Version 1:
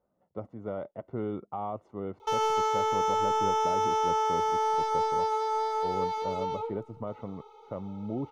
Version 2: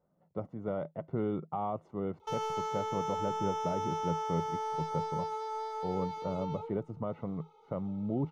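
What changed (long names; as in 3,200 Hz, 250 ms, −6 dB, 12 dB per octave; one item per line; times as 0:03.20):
background −8.5 dB
master: add parametric band 160 Hz +14 dB 0.26 octaves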